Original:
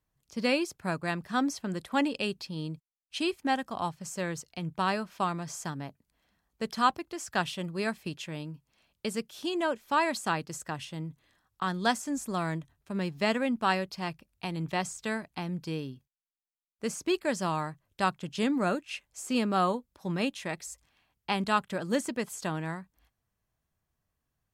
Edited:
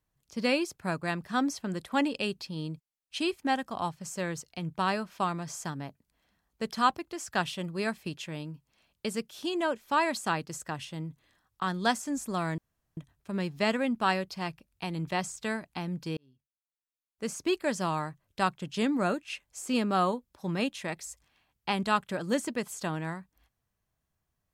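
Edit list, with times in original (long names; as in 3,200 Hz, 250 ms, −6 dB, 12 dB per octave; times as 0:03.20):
0:12.58: splice in room tone 0.39 s
0:15.78–0:17.07: fade in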